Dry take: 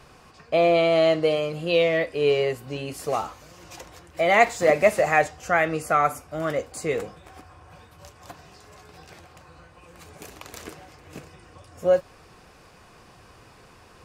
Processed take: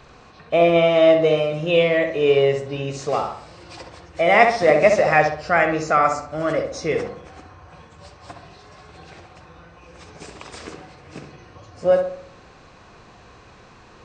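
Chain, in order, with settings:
hearing-aid frequency compression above 2,900 Hz 1.5 to 1
feedback echo with a low-pass in the loop 65 ms, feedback 47%, low-pass 2,100 Hz, level −5 dB
level +3 dB

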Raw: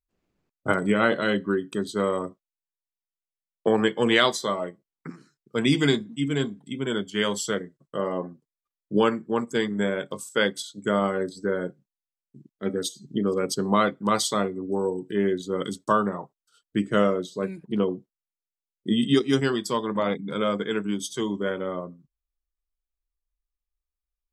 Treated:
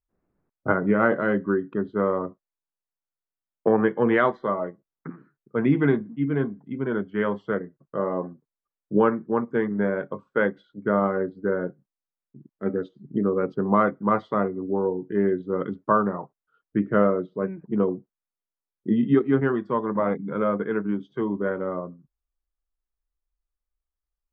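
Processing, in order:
low-pass filter 1,700 Hz 24 dB per octave
level +1.5 dB

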